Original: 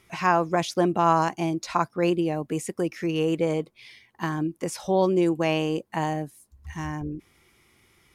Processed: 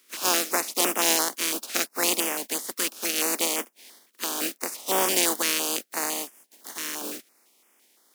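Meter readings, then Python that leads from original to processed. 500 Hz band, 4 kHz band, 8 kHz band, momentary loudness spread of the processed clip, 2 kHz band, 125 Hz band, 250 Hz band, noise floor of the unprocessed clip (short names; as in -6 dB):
-6.5 dB, +10.5 dB, +17.0 dB, 12 LU, +3.0 dB, -22.5 dB, -9.0 dB, -63 dBFS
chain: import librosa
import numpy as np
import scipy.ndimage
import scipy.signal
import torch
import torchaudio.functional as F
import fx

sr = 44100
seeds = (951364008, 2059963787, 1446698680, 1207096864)

y = fx.spec_flatten(x, sr, power=0.24)
y = scipy.signal.sosfilt(scipy.signal.butter(8, 220.0, 'highpass', fs=sr, output='sos'), y)
y = fx.filter_held_notch(y, sr, hz=5.9, low_hz=770.0, high_hz=4100.0)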